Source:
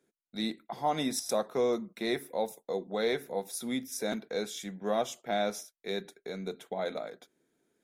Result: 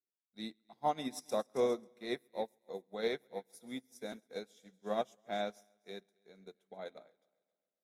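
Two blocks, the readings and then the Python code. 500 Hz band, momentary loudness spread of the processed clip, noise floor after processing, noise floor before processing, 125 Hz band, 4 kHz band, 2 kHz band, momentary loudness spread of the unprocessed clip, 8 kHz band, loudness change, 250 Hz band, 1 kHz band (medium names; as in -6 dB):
-6.0 dB, 17 LU, under -85 dBFS, -84 dBFS, -10.0 dB, -9.0 dB, -8.0 dB, 9 LU, -14.5 dB, -6.0 dB, -8.5 dB, -5.0 dB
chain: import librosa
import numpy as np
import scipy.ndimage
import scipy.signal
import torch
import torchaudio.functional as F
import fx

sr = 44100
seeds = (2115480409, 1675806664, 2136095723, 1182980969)

y = fx.echo_heads(x, sr, ms=135, heads='first and second', feedback_pct=47, wet_db=-17.0)
y = fx.upward_expand(y, sr, threshold_db=-44.0, expansion=2.5)
y = y * librosa.db_to_amplitude(-1.5)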